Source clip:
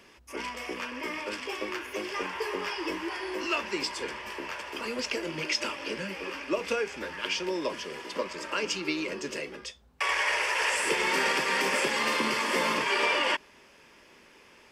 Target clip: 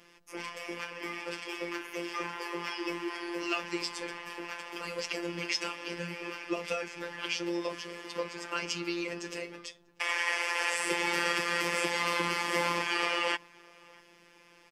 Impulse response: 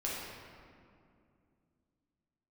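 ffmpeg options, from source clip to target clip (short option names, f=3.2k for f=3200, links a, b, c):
-filter_complex "[0:a]asplit=2[a][b];[b]adelay=641.4,volume=-25dB,highshelf=f=4k:g=-14.4[c];[a][c]amix=inputs=2:normalize=0,afftfilt=real='hypot(re,im)*cos(PI*b)':imag='0':win_size=1024:overlap=0.75"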